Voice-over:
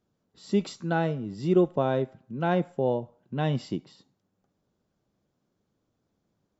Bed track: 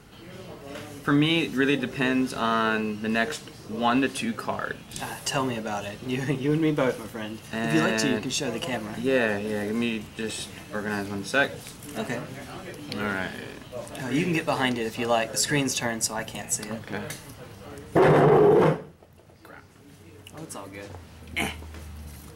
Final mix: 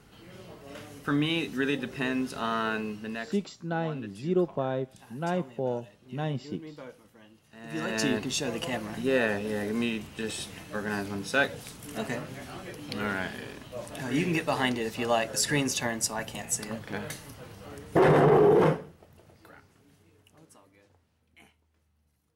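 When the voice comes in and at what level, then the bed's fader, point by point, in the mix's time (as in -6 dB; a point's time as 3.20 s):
2.80 s, -4.5 dB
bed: 2.94 s -5.5 dB
3.53 s -20.5 dB
7.54 s -20.5 dB
8.03 s -2.5 dB
19.22 s -2.5 dB
21.58 s -31 dB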